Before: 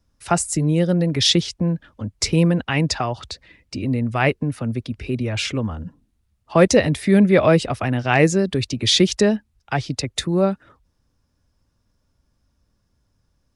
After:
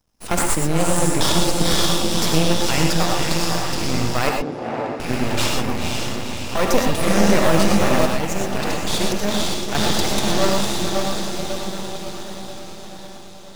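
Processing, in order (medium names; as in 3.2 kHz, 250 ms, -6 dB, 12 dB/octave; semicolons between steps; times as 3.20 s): tilt EQ +2 dB/octave; band-stop 400 Hz, Q 12; on a send: echo that smears into a reverb 510 ms, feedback 63%, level -4 dB; on the sum: peak limiter -9.5 dBFS, peak gain reduction 9 dB; half-wave rectifier; 8.06–9.75 s: expander -16 dBFS; in parallel at -3 dB: decimation with a swept rate 19×, swing 60% 1.6 Hz; 4.29–5.00 s: on the sum: band-pass filter 550 Hz, Q 0.76; gated-style reverb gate 140 ms rising, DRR 2 dB; trim +1 dB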